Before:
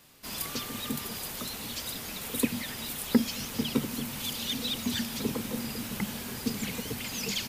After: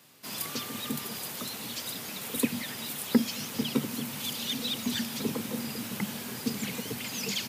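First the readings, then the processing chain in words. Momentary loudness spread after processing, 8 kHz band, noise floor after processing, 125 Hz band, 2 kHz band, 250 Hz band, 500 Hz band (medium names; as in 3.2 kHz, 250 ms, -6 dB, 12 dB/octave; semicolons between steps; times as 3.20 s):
6 LU, 0.0 dB, -40 dBFS, -1.5 dB, 0.0 dB, 0.0 dB, 0.0 dB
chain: high-pass 110 Hz 24 dB/octave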